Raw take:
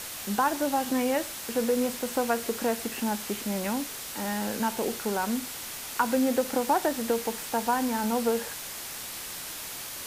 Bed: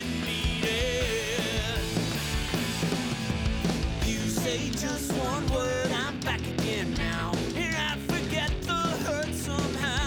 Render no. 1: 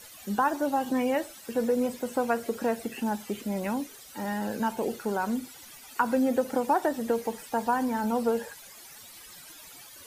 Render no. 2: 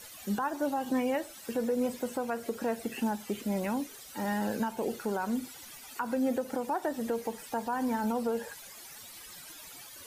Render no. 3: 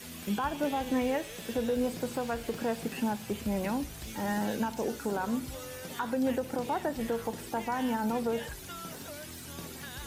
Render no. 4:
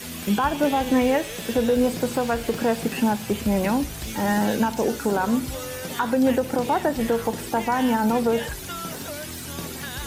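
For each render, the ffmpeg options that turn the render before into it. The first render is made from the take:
-af "afftdn=nr=15:nf=-38"
-af "alimiter=limit=0.0841:level=0:latency=1:release=255"
-filter_complex "[1:a]volume=0.168[s0];[0:a][s0]amix=inputs=2:normalize=0"
-af "volume=2.99"

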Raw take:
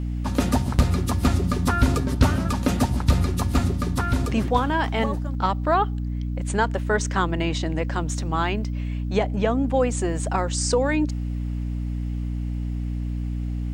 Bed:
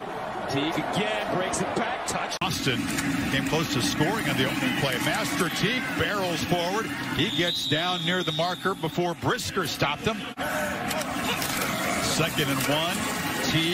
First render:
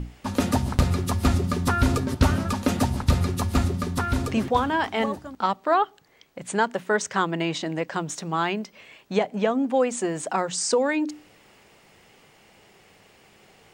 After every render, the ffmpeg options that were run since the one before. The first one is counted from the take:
-af "bandreject=f=60:t=h:w=6,bandreject=f=120:t=h:w=6,bandreject=f=180:t=h:w=6,bandreject=f=240:t=h:w=6,bandreject=f=300:t=h:w=6"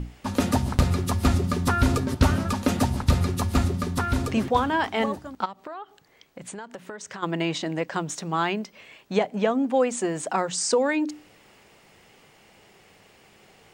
-filter_complex "[0:a]asplit=3[s0][s1][s2];[s0]afade=t=out:st=5.44:d=0.02[s3];[s1]acompressor=threshold=0.02:ratio=8:attack=3.2:release=140:knee=1:detection=peak,afade=t=in:st=5.44:d=0.02,afade=t=out:st=7.22:d=0.02[s4];[s2]afade=t=in:st=7.22:d=0.02[s5];[s3][s4][s5]amix=inputs=3:normalize=0"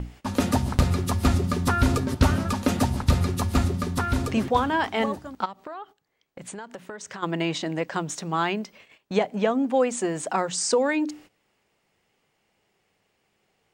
-af "agate=range=0.158:threshold=0.00501:ratio=16:detection=peak"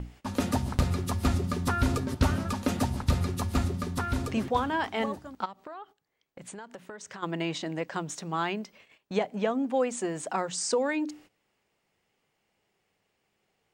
-af "volume=0.562"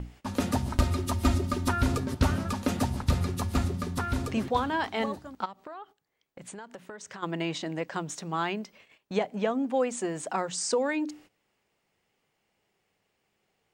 -filter_complex "[0:a]asettb=1/sr,asplit=3[s0][s1][s2];[s0]atrim=end=0.704[s3];[s1]atrim=start=0.7:end=1.73,asetpts=PTS-STARTPTS,afade=t=in:d=0.004:c=qsin,afade=t=out:st=1.026:d=0.004:c=qsin,aecho=1:1:3.2:0.62,atrim=end_sample=45423[s4];[s2]atrim=start=1.726[s5];[s3][s4]acrossfade=d=0.004:c1=hsin:c2=qsin[s6];[s6][s5]acrossfade=d=0.004:c1=qsin:c2=hsin,asettb=1/sr,asplit=3[s7][s8][s9];[s7]atrim=end=4.474[s10];[s8]atrim=start=4.47:end=5.23,asetpts=PTS-STARTPTS,afade=t=in:d=0.004:c=qsin,afade=t=out:st=0.756:d=0.004:c=qsin,equalizer=f=4100:w=6.3:g=6.5[s11];[s9]atrim=start=5.226[s12];[s10][s11]acrossfade=d=0.004:c1=hsin:c2=qsin[s13];[s13][s12]acrossfade=d=0.004:c1=qsin:c2=hsin"

